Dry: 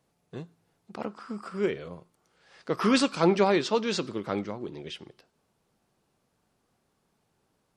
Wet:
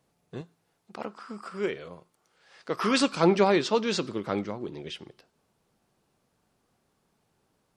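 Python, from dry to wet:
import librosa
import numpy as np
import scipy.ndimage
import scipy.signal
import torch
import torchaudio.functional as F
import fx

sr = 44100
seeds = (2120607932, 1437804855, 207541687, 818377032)

y = fx.low_shelf(x, sr, hz=340.0, db=-7.5, at=(0.41, 3.0))
y = y * librosa.db_to_amplitude(1.0)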